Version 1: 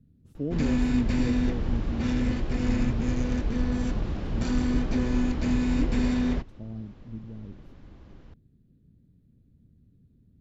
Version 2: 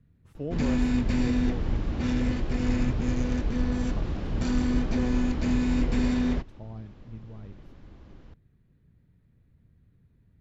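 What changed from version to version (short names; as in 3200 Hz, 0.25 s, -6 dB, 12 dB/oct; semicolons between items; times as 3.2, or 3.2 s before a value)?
speech: add graphic EQ 250/1000/2000 Hz -8/+11/+11 dB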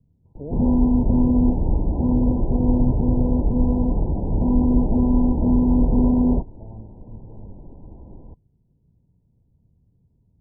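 background +8.5 dB; master: add Chebyshev low-pass 1000 Hz, order 10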